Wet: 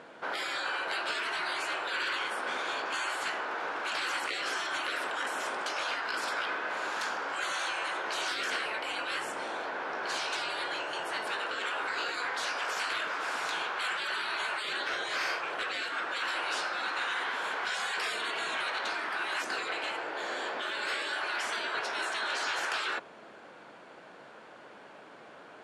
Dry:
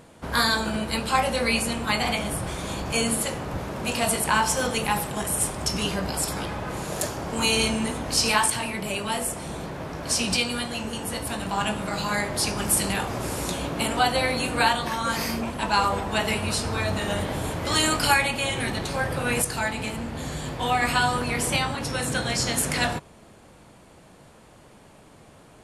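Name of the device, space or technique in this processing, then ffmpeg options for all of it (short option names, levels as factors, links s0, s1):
intercom: -af "afftfilt=real='re*lt(hypot(re,im),0.0794)':imag='im*lt(hypot(re,im),0.0794)':win_size=1024:overlap=0.75,highpass=370,lowpass=3600,equalizer=f=1500:t=o:w=0.3:g=7.5,asoftclip=type=tanh:threshold=0.0668,volume=1.33"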